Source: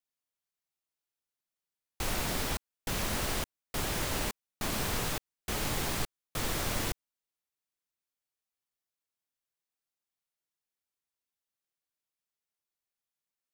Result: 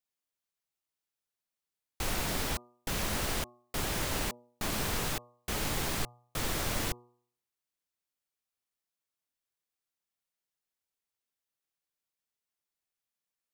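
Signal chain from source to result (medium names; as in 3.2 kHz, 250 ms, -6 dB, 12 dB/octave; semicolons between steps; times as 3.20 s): de-hum 121 Hz, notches 10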